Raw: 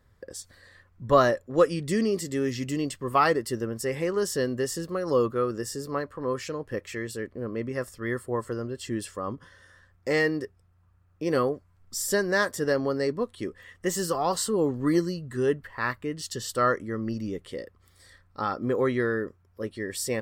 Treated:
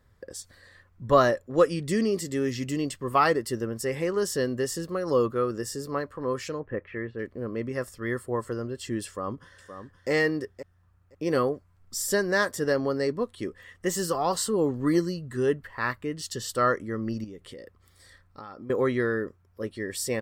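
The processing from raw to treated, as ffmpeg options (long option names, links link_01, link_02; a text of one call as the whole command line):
ffmpeg -i in.wav -filter_complex "[0:a]asplit=3[link_01][link_02][link_03];[link_01]afade=type=out:start_time=6.59:duration=0.02[link_04];[link_02]lowpass=frequency=2200:width=0.5412,lowpass=frequency=2200:width=1.3066,afade=type=in:start_time=6.59:duration=0.02,afade=type=out:start_time=7.18:duration=0.02[link_05];[link_03]afade=type=in:start_time=7.18:duration=0.02[link_06];[link_04][link_05][link_06]amix=inputs=3:normalize=0,asplit=2[link_07][link_08];[link_08]afade=type=in:start_time=9.06:duration=0.01,afade=type=out:start_time=10.1:duration=0.01,aecho=0:1:520|1040:0.316228|0.0474342[link_09];[link_07][link_09]amix=inputs=2:normalize=0,asettb=1/sr,asplit=3[link_10][link_11][link_12];[link_10]atrim=end=17.244[link_13];[link_11]atrim=start=17.24:end=18.7,asetpts=PTS-STARTPTS,afade=type=in:duration=0.004:curve=qsin,afade=type=out:start_time=1.456:duration=0.004:curve=qsin,acompressor=threshold=-39dB:ratio=6:attack=3.2:release=140:knee=1:detection=peak[link_14];[link_12]atrim=start=18.696[link_15];[link_13][link_14]acrossfade=duration=0.004:curve1=hsin:curve2=qsin[link_16];[link_16][link_15]acrossfade=duration=0.004:curve1=qsin:curve2=hsin" out.wav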